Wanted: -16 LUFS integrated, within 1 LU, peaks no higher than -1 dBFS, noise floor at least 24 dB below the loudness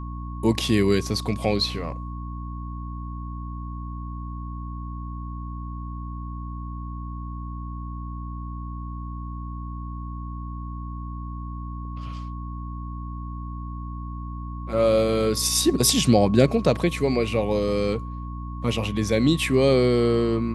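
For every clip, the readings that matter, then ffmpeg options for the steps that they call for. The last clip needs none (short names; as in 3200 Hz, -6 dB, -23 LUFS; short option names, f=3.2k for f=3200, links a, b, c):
hum 60 Hz; harmonics up to 300 Hz; hum level -31 dBFS; steady tone 1100 Hz; tone level -40 dBFS; loudness -26.0 LUFS; peak -3.0 dBFS; loudness target -16.0 LUFS
-> -af "bandreject=f=60:t=h:w=4,bandreject=f=120:t=h:w=4,bandreject=f=180:t=h:w=4,bandreject=f=240:t=h:w=4,bandreject=f=300:t=h:w=4"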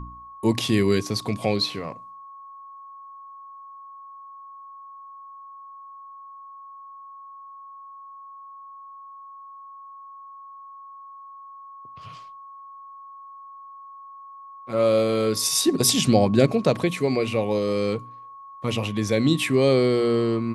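hum none; steady tone 1100 Hz; tone level -40 dBFS
-> -af "bandreject=f=1.1k:w=30"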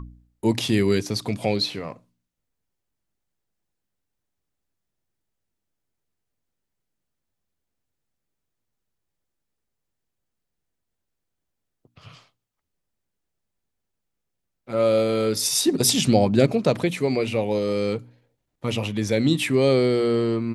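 steady tone none; loudness -22.0 LUFS; peak -3.0 dBFS; loudness target -16.0 LUFS
-> -af "volume=6dB,alimiter=limit=-1dB:level=0:latency=1"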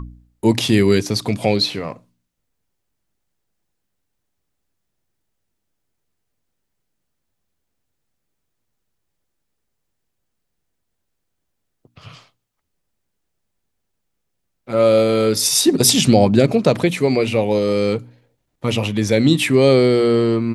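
loudness -16.0 LUFS; peak -1.0 dBFS; noise floor -75 dBFS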